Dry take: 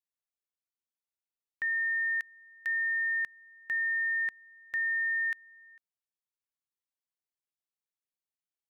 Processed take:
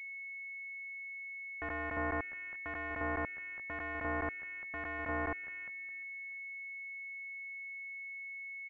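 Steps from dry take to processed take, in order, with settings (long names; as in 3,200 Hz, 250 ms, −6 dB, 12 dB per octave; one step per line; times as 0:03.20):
hold until the input has moved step −56.5 dBFS
dead-zone distortion −54.5 dBFS
repeating echo 349 ms, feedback 34%, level −9 dB
regular buffer underruns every 0.21 s, samples 512, zero, from 0:00.85
switching amplifier with a slow clock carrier 2,200 Hz
level +4.5 dB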